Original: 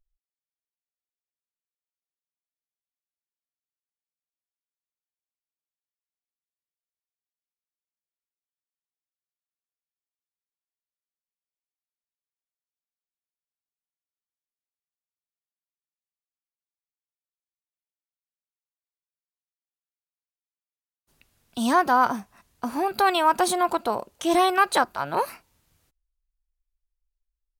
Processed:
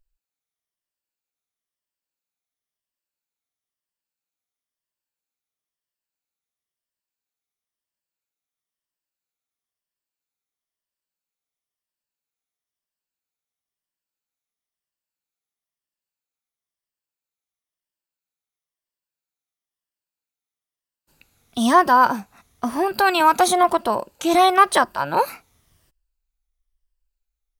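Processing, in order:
rippled gain that drifts along the octave scale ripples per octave 1.3, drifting −1 Hz, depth 7 dB
0:23.20–0:23.64: multiband upward and downward compressor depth 40%
level +4 dB

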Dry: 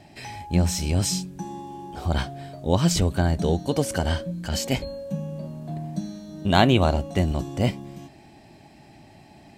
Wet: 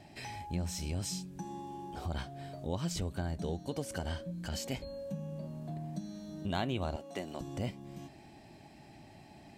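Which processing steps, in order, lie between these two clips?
0:06.96–0:07.41: high-pass filter 310 Hz 12 dB per octave
downward compressor 2 to 1, threshold −35 dBFS, peak gain reduction 12.5 dB
level −5 dB

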